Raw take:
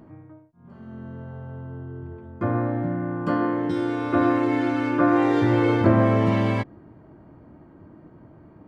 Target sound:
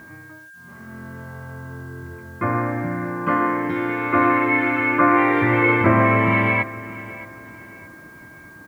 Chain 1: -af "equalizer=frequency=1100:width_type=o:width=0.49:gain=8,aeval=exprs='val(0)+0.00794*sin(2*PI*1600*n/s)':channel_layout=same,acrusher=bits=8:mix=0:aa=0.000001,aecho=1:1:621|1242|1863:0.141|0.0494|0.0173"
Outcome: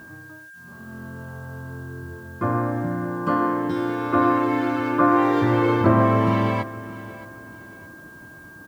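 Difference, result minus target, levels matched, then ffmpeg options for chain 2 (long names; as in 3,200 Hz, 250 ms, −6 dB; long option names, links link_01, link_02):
2,000 Hz band −7.0 dB
-af "lowpass=frequency=2200:width_type=q:width=6.7,equalizer=frequency=1100:width_type=o:width=0.49:gain=8,aeval=exprs='val(0)+0.00794*sin(2*PI*1600*n/s)':channel_layout=same,acrusher=bits=8:mix=0:aa=0.000001,aecho=1:1:621|1242|1863:0.141|0.0494|0.0173"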